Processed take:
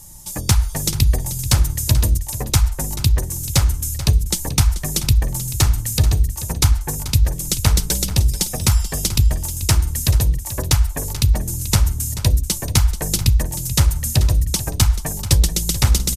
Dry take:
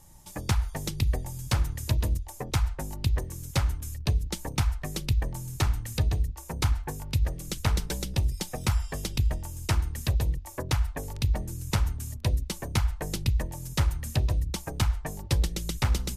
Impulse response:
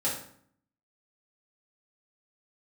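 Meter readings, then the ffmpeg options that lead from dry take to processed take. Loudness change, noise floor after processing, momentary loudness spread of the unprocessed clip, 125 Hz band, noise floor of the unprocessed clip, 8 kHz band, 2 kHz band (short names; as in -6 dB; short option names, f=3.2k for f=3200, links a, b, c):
+11.0 dB, -29 dBFS, 4 LU, +10.0 dB, -43 dBFS, +17.0 dB, +7.0 dB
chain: -af "bass=f=250:g=4,treble=f=4k:g=12,aecho=1:1:435:0.211,volume=6dB"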